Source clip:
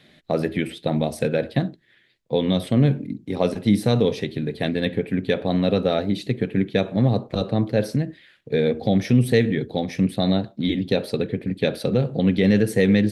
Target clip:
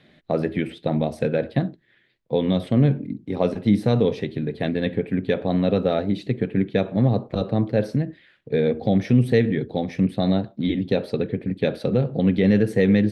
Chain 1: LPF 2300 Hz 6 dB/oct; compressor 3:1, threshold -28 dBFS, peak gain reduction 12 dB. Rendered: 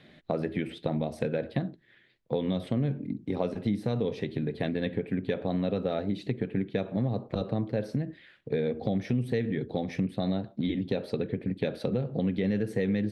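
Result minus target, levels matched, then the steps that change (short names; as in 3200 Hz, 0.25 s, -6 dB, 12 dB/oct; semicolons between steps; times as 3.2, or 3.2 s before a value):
compressor: peak gain reduction +12 dB
remove: compressor 3:1, threshold -28 dBFS, peak gain reduction 12 dB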